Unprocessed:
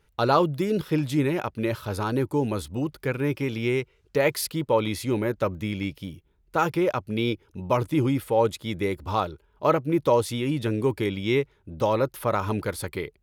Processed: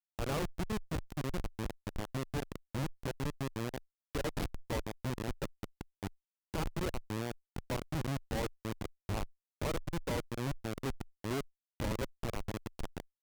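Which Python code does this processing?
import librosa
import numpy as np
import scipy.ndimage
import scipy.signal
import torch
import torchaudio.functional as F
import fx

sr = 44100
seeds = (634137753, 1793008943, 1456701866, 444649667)

y = fx.recorder_agc(x, sr, target_db=-16.0, rise_db_per_s=62.0, max_gain_db=30)
y = fx.schmitt(y, sr, flips_db=-18.0)
y = fx.tube_stage(y, sr, drive_db=35.0, bias=0.5)
y = y * librosa.db_to_amplitude(2.0)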